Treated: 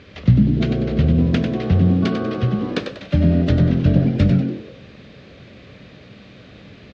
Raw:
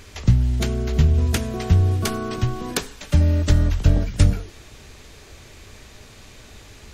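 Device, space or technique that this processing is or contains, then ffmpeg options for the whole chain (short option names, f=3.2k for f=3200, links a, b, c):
frequency-shifting delay pedal into a guitar cabinet: -filter_complex "[0:a]asplit=6[a][b][c][d][e][f];[b]adelay=96,afreqshift=88,volume=-7dB[g];[c]adelay=192,afreqshift=176,volume=-15dB[h];[d]adelay=288,afreqshift=264,volume=-22.9dB[i];[e]adelay=384,afreqshift=352,volume=-30.9dB[j];[f]adelay=480,afreqshift=440,volume=-38.8dB[k];[a][g][h][i][j][k]amix=inputs=6:normalize=0,highpass=81,equalizer=f=130:t=q:w=4:g=5,equalizer=f=200:t=q:w=4:g=7,equalizer=f=280:t=q:w=4:g=5,equalizer=f=540:t=q:w=4:g=7,equalizer=f=900:t=q:w=4:g=-7,lowpass=f=4k:w=0.5412,lowpass=f=4k:w=1.3066"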